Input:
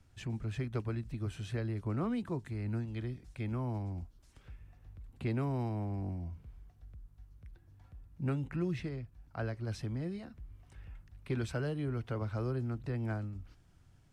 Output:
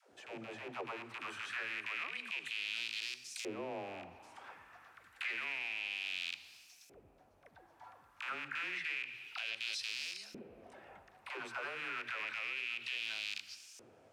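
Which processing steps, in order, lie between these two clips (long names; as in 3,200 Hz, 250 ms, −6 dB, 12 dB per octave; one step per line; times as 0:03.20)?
loose part that buzzes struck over −39 dBFS, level −32 dBFS
RIAA equalisation recording
in parallel at +1 dB: speech leveller
on the sum: hum removal 65.46 Hz, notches 2
all-pass dispersion lows, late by 126 ms, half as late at 340 Hz
downward compressor, threshold −40 dBFS, peak gain reduction 12.5 dB
soft clipping −36 dBFS, distortion −17 dB
on a send at −12 dB: convolution reverb RT60 3.2 s, pre-delay 55 ms
on the sum: auto-filter band-pass saw up 0.29 Hz 430–6,100 Hz
brickwall limiter −43.5 dBFS, peak gain reduction 6.5 dB
level +13 dB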